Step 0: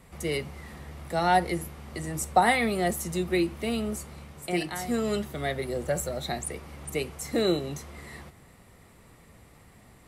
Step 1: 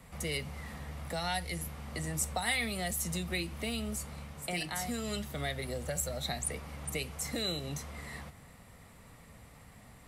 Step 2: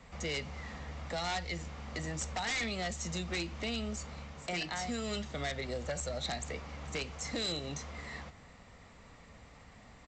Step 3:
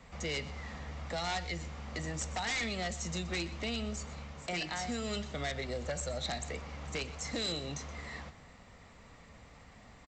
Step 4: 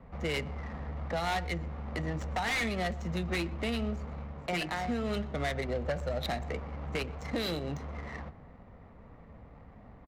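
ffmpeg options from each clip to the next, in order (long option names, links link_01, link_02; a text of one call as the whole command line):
ffmpeg -i in.wav -filter_complex "[0:a]equalizer=frequency=360:width=4.1:gain=-10,acrossover=split=110|2300[link_01][link_02][link_03];[link_02]acompressor=threshold=-36dB:ratio=6[link_04];[link_01][link_04][link_03]amix=inputs=3:normalize=0" out.wav
ffmpeg -i in.wav -af "equalizer=frequency=130:width=1.3:gain=-5.5,aresample=16000,aeval=exprs='0.0316*(abs(mod(val(0)/0.0316+3,4)-2)-1)':channel_layout=same,aresample=44100,volume=1dB" out.wav
ffmpeg -i in.wav -af "aecho=1:1:124:0.15" out.wav
ffmpeg -i in.wav -af "adynamicsmooth=sensitivity=7:basefreq=970,volume=5dB" out.wav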